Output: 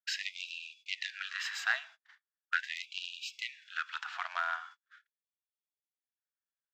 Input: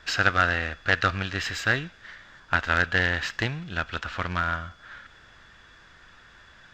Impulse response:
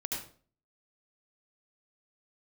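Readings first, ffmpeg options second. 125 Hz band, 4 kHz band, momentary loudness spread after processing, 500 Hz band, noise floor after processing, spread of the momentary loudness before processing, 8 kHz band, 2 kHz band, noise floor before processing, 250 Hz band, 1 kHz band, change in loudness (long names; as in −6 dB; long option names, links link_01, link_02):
below −40 dB, −6.5 dB, 8 LU, −24.0 dB, below −85 dBFS, 18 LU, −6.5 dB, −11.5 dB, −53 dBFS, below −40 dB, −12.5 dB, −11.5 dB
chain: -af "agate=range=-46dB:threshold=-41dB:ratio=16:detection=peak,afftfilt=real='re*gte(b*sr/1024,620*pow(2400/620,0.5+0.5*sin(2*PI*0.4*pts/sr)))':imag='im*gte(b*sr/1024,620*pow(2400/620,0.5+0.5*sin(2*PI*0.4*pts/sr)))':win_size=1024:overlap=0.75,volume=-6.5dB"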